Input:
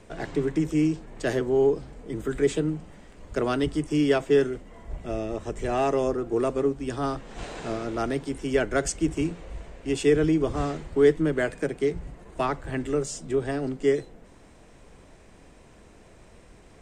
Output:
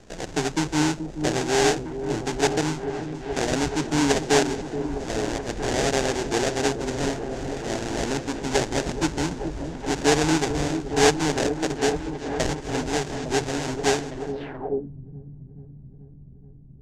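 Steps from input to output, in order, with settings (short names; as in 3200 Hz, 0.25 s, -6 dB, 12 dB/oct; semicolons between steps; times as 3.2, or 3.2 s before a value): sample-rate reducer 1200 Hz, jitter 20%; repeats that get brighter 0.429 s, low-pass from 400 Hz, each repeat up 1 oct, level -6 dB; low-pass sweep 6900 Hz -> 150 Hz, 14.3–14.91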